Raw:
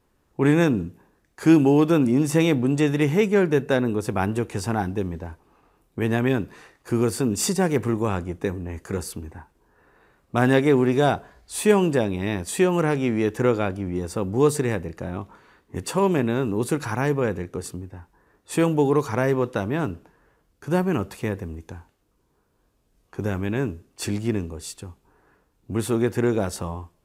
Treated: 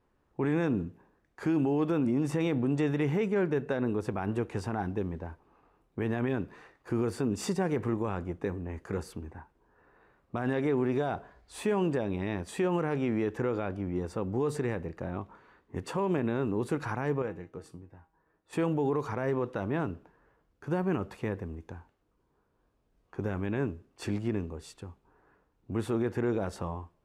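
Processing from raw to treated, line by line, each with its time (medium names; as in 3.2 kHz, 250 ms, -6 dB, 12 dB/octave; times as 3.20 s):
17.22–18.53 s: feedback comb 160 Hz, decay 0.21 s, mix 70%
whole clip: low-pass 1.2 kHz 6 dB/octave; tilt shelf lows -3 dB, about 630 Hz; peak limiter -17 dBFS; trim -3 dB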